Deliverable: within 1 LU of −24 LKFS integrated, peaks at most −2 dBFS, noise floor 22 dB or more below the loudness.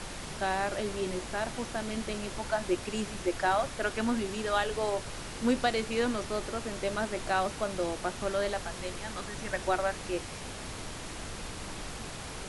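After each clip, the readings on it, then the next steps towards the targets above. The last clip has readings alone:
background noise floor −41 dBFS; target noise floor −55 dBFS; integrated loudness −33.0 LKFS; sample peak −14.0 dBFS; target loudness −24.0 LKFS
→ noise reduction from a noise print 14 dB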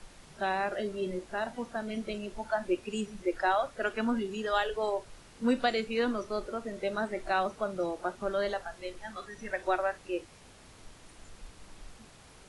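background noise floor −55 dBFS; integrated loudness −33.0 LKFS; sample peak −14.5 dBFS; target loudness −24.0 LKFS
→ level +9 dB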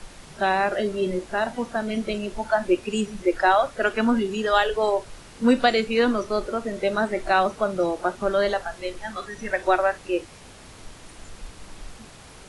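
integrated loudness −24.0 LKFS; sample peak −5.5 dBFS; background noise floor −46 dBFS

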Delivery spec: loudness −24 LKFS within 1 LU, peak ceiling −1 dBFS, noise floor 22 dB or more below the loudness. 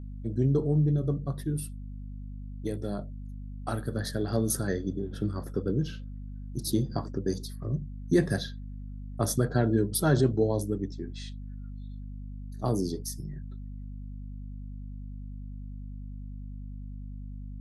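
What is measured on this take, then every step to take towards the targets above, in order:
mains hum 50 Hz; hum harmonics up to 250 Hz; level of the hum −37 dBFS; integrated loudness −30.0 LKFS; sample peak −11.0 dBFS; target loudness −24.0 LKFS
→ hum removal 50 Hz, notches 5
level +6 dB

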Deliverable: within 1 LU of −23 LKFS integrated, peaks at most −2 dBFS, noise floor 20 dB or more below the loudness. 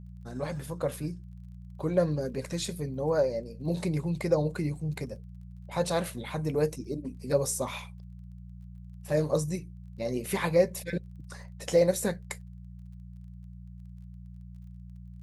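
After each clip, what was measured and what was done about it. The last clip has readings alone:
crackle rate 25 per second; mains hum 60 Hz; hum harmonics up to 180 Hz; level of the hum −42 dBFS; integrated loudness −30.5 LKFS; sample peak −11.0 dBFS; target loudness −23.0 LKFS
→ click removal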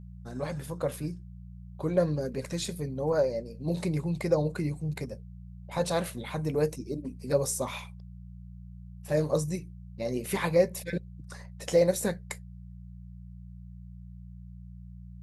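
crackle rate 0 per second; mains hum 60 Hz; hum harmonics up to 180 Hz; level of the hum −42 dBFS
→ hum removal 60 Hz, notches 3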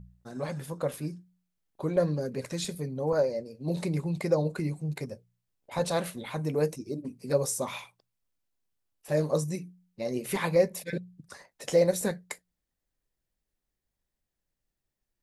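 mains hum none found; integrated loudness −30.5 LKFS; sample peak −11.5 dBFS; target loudness −23.0 LKFS
→ level +7.5 dB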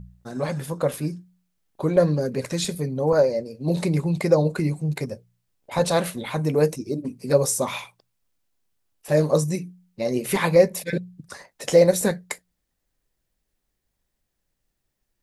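integrated loudness −23.0 LKFS; sample peak −4.0 dBFS; background noise floor −78 dBFS

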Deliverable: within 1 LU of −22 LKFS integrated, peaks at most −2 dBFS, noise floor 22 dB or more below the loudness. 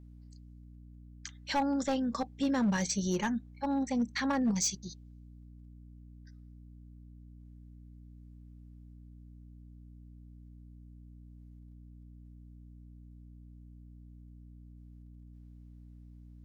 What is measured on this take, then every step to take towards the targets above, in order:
share of clipped samples 0.3%; peaks flattened at −24.0 dBFS; mains hum 60 Hz; hum harmonics up to 300 Hz; level of the hum −49 dBFS; integrated loudness −32.0 LKFS; sample peak −24.0 dBFS; target loudness −22.0 LKFS
→ clipped peaks rebuilt −24 dBFS
hum removal 60 Hz, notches 5
level +10 dB

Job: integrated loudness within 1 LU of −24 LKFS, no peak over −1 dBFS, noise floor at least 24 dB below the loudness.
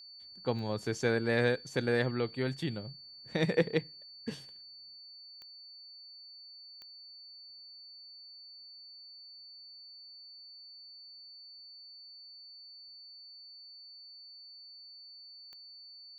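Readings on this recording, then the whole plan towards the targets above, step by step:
number of clicks 4; interfering tone 4,500 Hz; level of the tone −49 dBFS; integrated loudness −33.0 LKFS; sample peak −14.0 dBFS; target loudness −24.0 LKFS
→ click removal
notch filter 4,500 Hz, Q 30
level +9 dB

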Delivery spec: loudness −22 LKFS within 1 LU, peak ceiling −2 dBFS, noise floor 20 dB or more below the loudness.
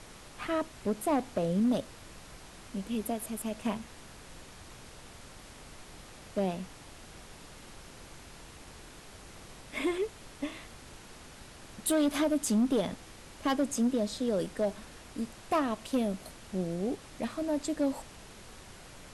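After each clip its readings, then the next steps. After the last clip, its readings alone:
share of clipped samples 0.8%; peaks flattened at −22.0 dBFS; background noise floor −51 dBFS; target noise floor −53 dBFS; integrated loudness −32.5 LKFS; sample peak −22.0 dBFS; target loudness −22.0 LKFS
→ clipped peaks rebuilt −22 dBFS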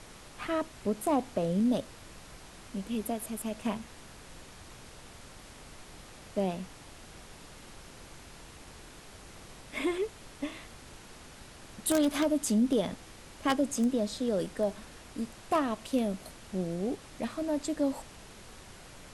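share of clipped samples 0.0%; background noise floor −51 dBFS; target noise floor −52 dBFS
→ noise reduction from a noise print 6 dB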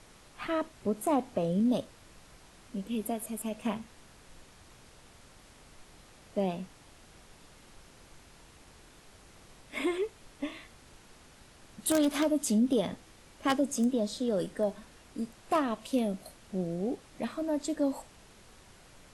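background noise floor −57 dBFS; integrated loudness −32.0 LKFS; sample peak −13.0 dBFS; target loudness −22.0 LKFS
→ level +10 dB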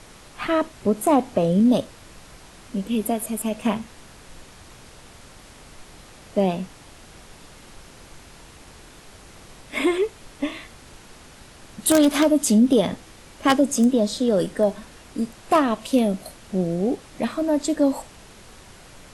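integrated loudness −22.0 LKFS; sample peak −3.0 dBFS; background noise floor −47 dBFS

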